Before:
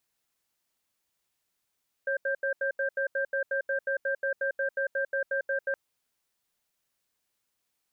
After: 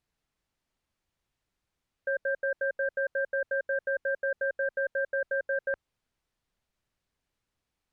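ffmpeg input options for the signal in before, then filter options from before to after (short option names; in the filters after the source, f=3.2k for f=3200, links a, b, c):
-f lavfi -i "aevalsrc='0.0376*(sin(2*PI*548*t)+sin(2*PI*1580*t))*clip(min(mod(t,0.18),0.1-mod(t,0.18))/0.005,0,1)':d=3.67:s=44100"
-af "aemphasis=mode=reproduction:type=bsi"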